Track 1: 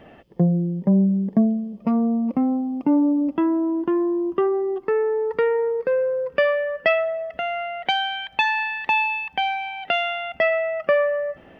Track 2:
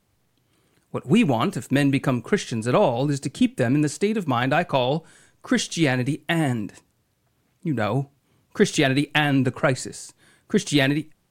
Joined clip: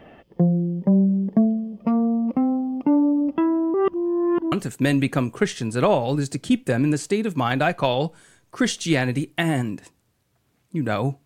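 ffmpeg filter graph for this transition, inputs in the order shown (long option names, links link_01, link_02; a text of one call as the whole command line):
ffmpeg -i cue0.wav -i cue1.wav -filter_complex "[0:a]apad=whole_dur=11.25,atrim=end=11.25,asplit=2[link_01][link_02];[link_01]atrim=end=3.742[link_03];[link_02]atrim=start=3.738:end=4.522,asetpts=PTS-STARTPTS,areverse[link_04];[1:a]atrim=start=1.428:end=8.16[link_05];[link_03][link_04]acrossfade=duration=0.004:curve1=hsin:curve2=hsin[link_06];[link_06][link_05]acrossfade=duration=0.004:curve1=hsin:curve2=hsin" out.wav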